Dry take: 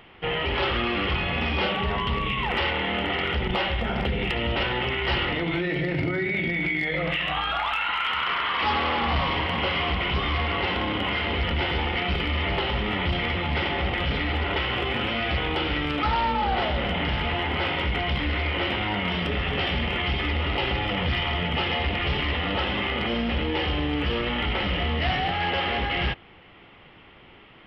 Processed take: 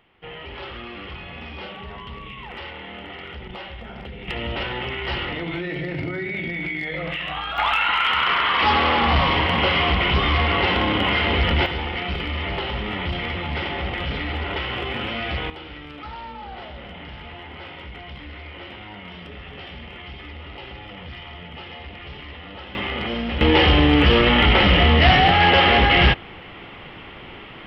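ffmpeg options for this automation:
-af "asetnsamples=n=441:p=0,asendcmd='4.28 volume volume -2dB;7.58 volume volume 6dB;11.66 volume volume -1dB;15.5 volume volume -12dB;22.75 volume volume 0dB;23.41 volume volume 11dB',volume=-10.5dB"

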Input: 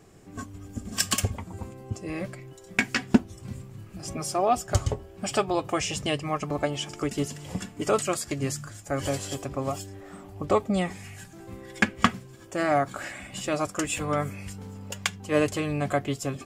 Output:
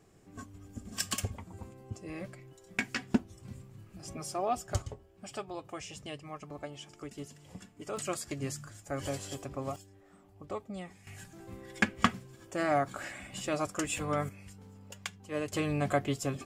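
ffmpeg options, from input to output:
-af "asetnsamples=n=441:p=0,asendcmd='4.82 volume volume -15dB;7.97 volume volume -7.5dB;9.76 volume volume -16dB;11.07 volume volume -5dB;14.29 volume volume -12dB;15.53 volume volume -3dB',volume=-8.5dB"

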